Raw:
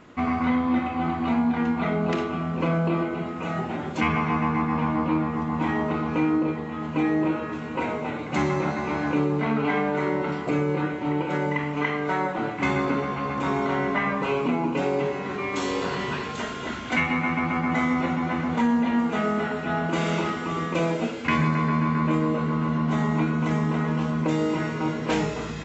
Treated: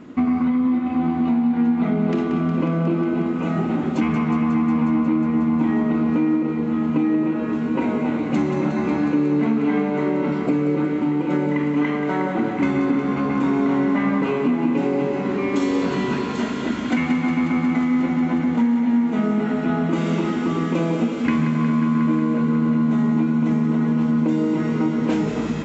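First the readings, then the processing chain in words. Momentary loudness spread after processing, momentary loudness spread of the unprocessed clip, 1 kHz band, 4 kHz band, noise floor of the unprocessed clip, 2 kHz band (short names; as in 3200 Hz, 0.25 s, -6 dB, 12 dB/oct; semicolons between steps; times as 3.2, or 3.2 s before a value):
3 LU, 5 LU, -2.0 dB, -2.0 dB, -33 dBFS, -2.5 dB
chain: bell 250 Hz +14 dB 1.3 oct; compressor, threshold -17 dBFS, peak gain reduction 11 dB; thinning echo 0.181 s, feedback 83%, high-pass 440 Hz, level -8.5 dB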